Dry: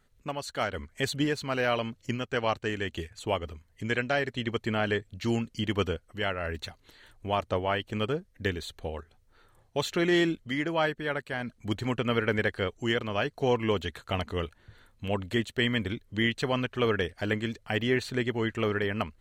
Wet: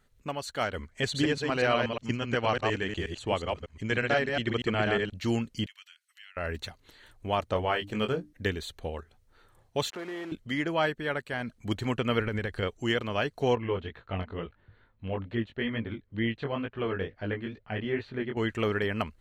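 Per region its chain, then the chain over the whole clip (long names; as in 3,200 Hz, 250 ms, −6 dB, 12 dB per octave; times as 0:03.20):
0:00.90–0:05.13: delay that plays each chunk backwards 120 ms, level −3 dB + low-pass filter 7,900 Hz
0:05.66–0:06.37: inverse Chebyshev high-pass filter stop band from 310 Hz, stop band 80 dB + downward compressor 2.5 to 1, threshold −54 dBFS
0:07.53–0:08.33: mains-hum notches 50/100/150/200/250/300 Hz + double-tracking delay 23 ms −7 dB
0:09.90–0:10.32: one scale factor per block 3 bits + downward compressor 4 to 1, threshold −30 dBFS + resonant band-pass 790 Hz, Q 0.79
0:12.20–0:12.63: downward compressor, threshold −29 dBFS + low-shelf EQ 110 Hz +11.5 dB
0:13.55–0:18.37: chorus effect 2.2 Hz, delay 17.5 ms, depth 4.3 ms + high-frequency loss of the air 330 metres
whole clip: no processing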